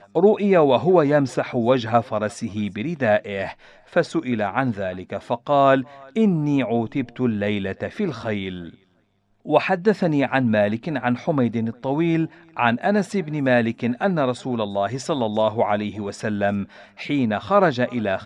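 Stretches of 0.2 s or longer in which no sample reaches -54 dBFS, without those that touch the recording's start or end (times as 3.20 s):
9.00–9.41 s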